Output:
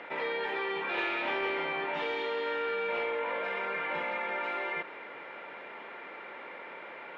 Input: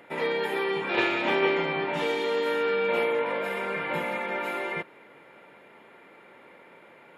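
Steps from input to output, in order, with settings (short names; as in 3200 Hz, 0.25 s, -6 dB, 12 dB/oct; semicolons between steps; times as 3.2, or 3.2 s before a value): HPF 860 Hz 6 dB/oct; in parallel at -6 dB: hard clip -26.5 dBFS, distortion -14 dB; on the sum: air absorption 230 m; fast leveller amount 50%; gain -6 dB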